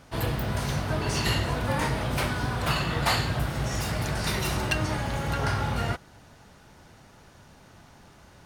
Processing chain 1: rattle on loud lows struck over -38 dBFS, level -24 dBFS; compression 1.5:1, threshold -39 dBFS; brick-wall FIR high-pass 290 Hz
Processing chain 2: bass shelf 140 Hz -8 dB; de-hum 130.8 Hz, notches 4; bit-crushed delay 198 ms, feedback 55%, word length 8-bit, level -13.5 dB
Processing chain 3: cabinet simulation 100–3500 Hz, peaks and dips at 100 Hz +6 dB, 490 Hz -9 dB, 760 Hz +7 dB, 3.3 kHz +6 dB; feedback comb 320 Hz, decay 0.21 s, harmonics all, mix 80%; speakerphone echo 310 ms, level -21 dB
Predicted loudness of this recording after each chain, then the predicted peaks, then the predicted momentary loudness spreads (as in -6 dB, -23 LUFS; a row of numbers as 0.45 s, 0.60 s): -35.0 LUFS, -29.0 LUFS, -38.5 LUFS; -17.5 dBFS, -12.5 dBFS, -23.0 dBFS; 22 LU, 5 LU, 5 LU